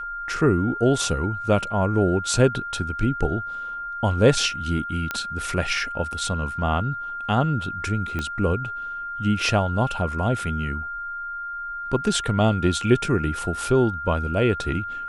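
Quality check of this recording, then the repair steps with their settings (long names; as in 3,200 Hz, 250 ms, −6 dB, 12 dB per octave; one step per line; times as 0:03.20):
whistle 1,400 Hz −29 dBFS
0:05.11: click −11 dBFS
0:08.19: click −15 dBFS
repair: click removal
notch filter 1,400 Hz, Q 30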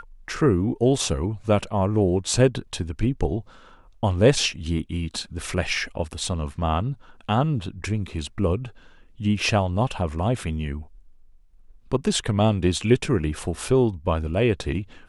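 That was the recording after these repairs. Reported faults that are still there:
0:08.19: click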